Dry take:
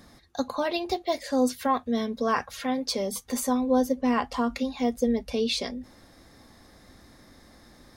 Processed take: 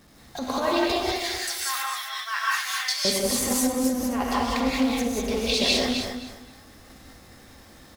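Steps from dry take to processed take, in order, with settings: jump at every zero crossing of -39 dBFS; 1.04–3.05 s: high-pass 1.4 kHz 24 dB/octave; gate -41 dBFS, range -16 dB; compressor with a negative ratio -27 dBFS, ratio -0.5; feedback delay 261 ms, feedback 21%, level -8 dB; gated-style reverb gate 220 ms rising, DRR -4.5 dB; loudspeaker Doppler distortion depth 0.14 ms

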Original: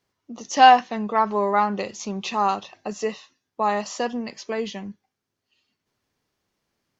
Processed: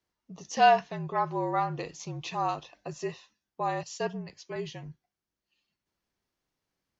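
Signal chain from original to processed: frequency shift -51 Hz; 3.83–4.56 s: three bands expanded up and down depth 100%; trim -8 dB

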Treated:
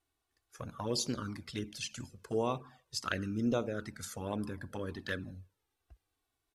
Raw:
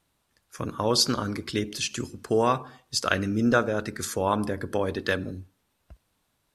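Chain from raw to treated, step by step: touch-sensitive flanger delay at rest 2.7 ms, full sweep at -18 dBFS; resampled via 32 kHz; trim -8 dB

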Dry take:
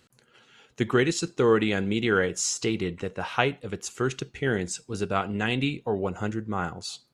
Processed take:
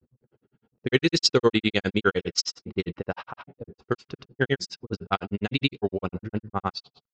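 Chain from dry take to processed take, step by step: granulator 73 ms, grains 9.8 per s, pitch spread up and down by 0 st; level-controlled noise filter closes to 350 Hz, open at -25.5 dBFS; resonant low-pass 5 kHz, resonance Q 5.6; trim +5 dB

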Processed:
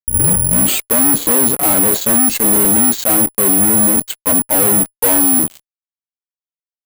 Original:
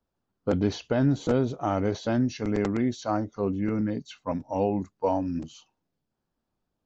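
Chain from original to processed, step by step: tape start-up on the opening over 0.94 s; resonant low shelf 140 Hz -9.5 dB, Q 1.5; fuzz box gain 38 dB, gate -44 dBFS; careless resampling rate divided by 4×, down filtered, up zero stuff; trim -3 dB

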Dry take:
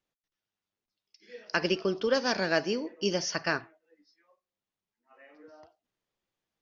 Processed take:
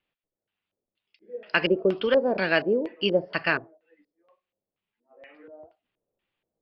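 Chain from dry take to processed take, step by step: resampled via 11.025 kHz; LFO low-pass square 2.1 Hz 550–2800 Hz; trim +2.5 dB

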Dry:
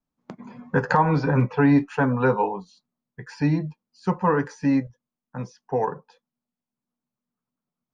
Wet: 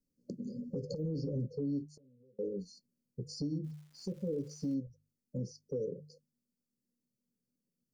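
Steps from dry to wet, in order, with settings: brick-wall FIR band-stop 590–4200 Hz; hum notches 50/100/150 Hz; compression 4:1, threshold -34 dBFS, peak gain reduction 16.5 dB; peak limiter -29.5 dBFS, peak gain reduction 7.5 dB; 1.95–2.39 s: inverted gate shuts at -48 dBFS, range -29 dB; 3.63–4.73 s: crackle 530 per s -57 dBFS; trim +1 dB

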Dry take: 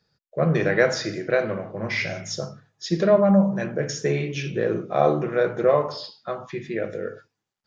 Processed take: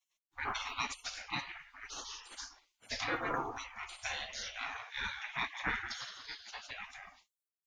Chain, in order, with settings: treble shelf 3.1 kHz -5 dB; 4.58–6.71 s: frequency-shifting echo 170 ms, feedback 51%, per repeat -110 Hz, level -9 dB; spectral gate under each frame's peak -30 dB weak; trim +7 dB

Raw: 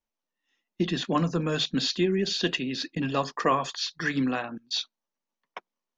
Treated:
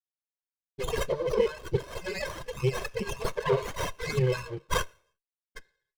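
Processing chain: rattle on loud lows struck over -33 dBFS, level -35 dBFS; low-pass 6 kHz 12 dB/octave; spectral gate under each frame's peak -10 dB weak; treble shelf 2.1 kHz +10 dB; comb 1.9 ms, depth 84%; 1.08–3.46 s: compressor with a negative ratio -33 dBFS, ratio -0.5; loudest bins only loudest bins 16; hysteresis with a dead band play -52.5 dBFS; reverberation RT60 0.55 s, pre-delay 3 ms, DRR 13 dB; sliding maximum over 9 samples

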